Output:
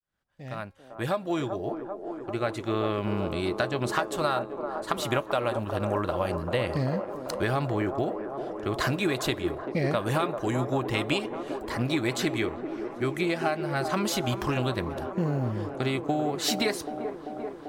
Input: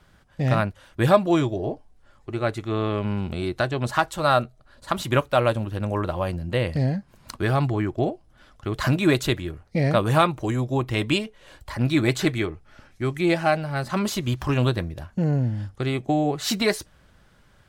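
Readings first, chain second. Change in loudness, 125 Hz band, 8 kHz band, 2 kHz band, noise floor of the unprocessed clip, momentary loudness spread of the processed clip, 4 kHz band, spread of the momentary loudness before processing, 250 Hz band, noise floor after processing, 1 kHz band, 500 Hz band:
-5.0 dB, -7.5 dB, -1.5 dB, -3.5 dB, -57 dBFS, 8 LU, -3.0 dB, 10 LU, -4.5 dB, -43 dBFS, -4.0 dB, -3.5 dB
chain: opening faded in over 2.67 s; low shelf 220 Hz -7 dB; compressor 10:1, threshold -24 dBFS, peak gain reduction 11.5 dB; short-mantissa float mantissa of 6-bit; resonator 270 Hz, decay 1.1 s, mix 30%; band-limited delay 0.391 s, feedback 78%, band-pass 560 Hz, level -6 dB; gain +4 dB

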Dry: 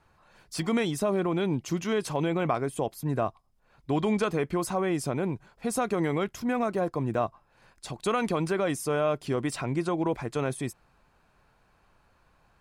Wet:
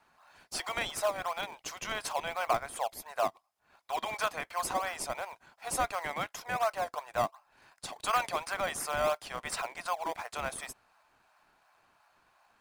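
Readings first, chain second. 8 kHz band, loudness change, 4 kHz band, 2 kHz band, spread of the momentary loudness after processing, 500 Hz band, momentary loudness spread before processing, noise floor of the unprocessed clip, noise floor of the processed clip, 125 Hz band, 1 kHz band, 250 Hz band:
+0.5 dB, -5.0 dB, +1.0 dB, +0.5 dB, 9 LU, -7.5 dB, 6 LU, -66 dBFS, -71 dBFS, -19.0 dB, +0.5 dB, -21.0 dB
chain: steep high-pass 630 Hz 48 dB/oct; in parallel at -8 dB: decimation with a swept rate 23×, swing 100% 2.8 Hz

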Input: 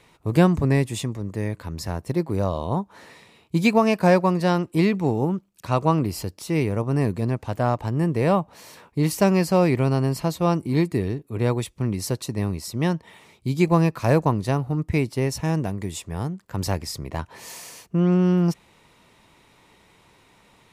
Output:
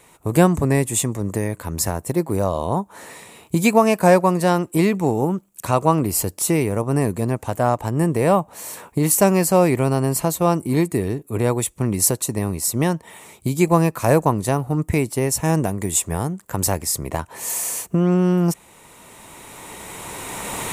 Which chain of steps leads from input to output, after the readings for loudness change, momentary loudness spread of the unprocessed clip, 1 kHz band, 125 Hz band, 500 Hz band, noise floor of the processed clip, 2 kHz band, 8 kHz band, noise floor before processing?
+3.0 dB, 12 LU, +4.5 dB, +1.0 dB, +4.0 dB, -52 dBFS, +3.0 dB, +14.5 dB, -58 dBFS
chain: recorder AGC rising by 11 dB/s; EQ curve 130 Hz 0 dB, 730 Hz +5 dB, 5000 Hz 0 dB, 7600 Hz +14 dB

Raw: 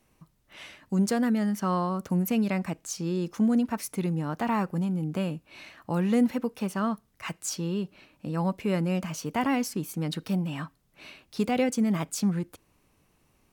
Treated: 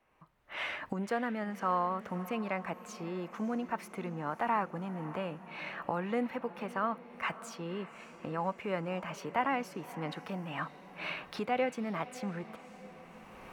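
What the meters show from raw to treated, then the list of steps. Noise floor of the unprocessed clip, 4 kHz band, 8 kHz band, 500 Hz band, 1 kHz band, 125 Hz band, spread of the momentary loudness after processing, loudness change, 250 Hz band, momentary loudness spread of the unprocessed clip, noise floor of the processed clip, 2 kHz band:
-68 dBFS, -6.5 dB, -16.5 dB, -4.0 dB, -0.5 dB, -12.5 dB, 10 LU, -8.0 dB, -12.0 dB, 14 LU, -54 dBFS, 0.0 dB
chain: recorder AGC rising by 21 dB/s; three-band isolator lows -14 dB, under 500 Hz, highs -20 dB, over 2600 Hz; diffused feedback echo 0.573 s, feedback 57%, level -15.5 dB

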